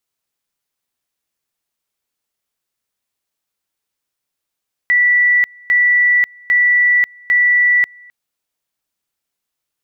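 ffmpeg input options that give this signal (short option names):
-f lavfi -i "aevalsrc='pow(10,(-9-29*gte(mod(t,0.8),0.54))/20)*sin(2*PI*1960*t)':d=3.2:s=44100"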